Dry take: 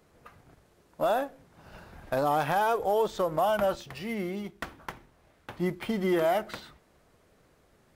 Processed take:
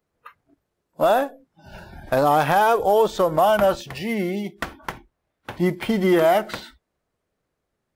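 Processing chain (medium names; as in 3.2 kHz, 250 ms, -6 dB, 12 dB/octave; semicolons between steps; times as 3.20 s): spectral noise reduction 23 dB; trim +8.5 dB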